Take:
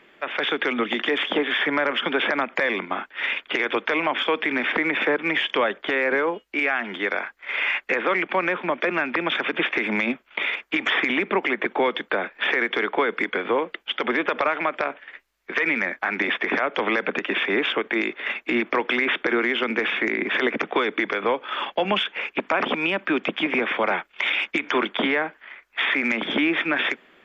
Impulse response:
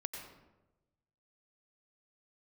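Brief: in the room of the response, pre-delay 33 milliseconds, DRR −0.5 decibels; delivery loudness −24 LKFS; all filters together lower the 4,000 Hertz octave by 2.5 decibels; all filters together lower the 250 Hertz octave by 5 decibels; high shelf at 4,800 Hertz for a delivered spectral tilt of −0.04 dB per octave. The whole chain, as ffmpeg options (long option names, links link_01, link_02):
-filter_complex "[0:a]equalizer=frequency=250:width_type=o:gain=-7,equalizer=frequency=4000:width_type=o:gain=-7,highshelf=frequency=4800:gain=8.5,asplit=2[link_01][link_02];[1:a]atrim=start_sample=2205,adelay=33[link_03];[link_02][link_03]afir=irnorm=-1:irlink=0,volume=1dB[link_04];[link_01][link_04]amix=inputs=2:normalize=0,volume=-3dB"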